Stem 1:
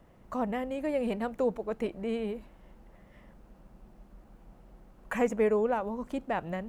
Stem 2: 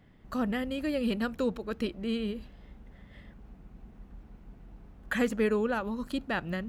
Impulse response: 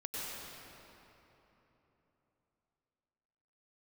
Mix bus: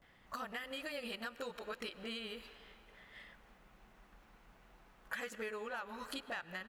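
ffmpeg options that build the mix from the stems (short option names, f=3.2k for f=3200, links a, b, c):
-filter_complex "[0:a]volume=-11.5dB[a];[1:a]highpass=1k,asoftclip=type=tanh:threshold=-23dB,adelay=19,volume=3dB,asplit=2[b][c];[c]volume=-17.5dB[d];[2:a]atrim=start_sample=2205[e];[d][e]afir=irnorm=-1:irlink=0[f];[a][b][f]amix=inputs=3:normalize=0,acompressor=threshold=-40dB:ratio=6"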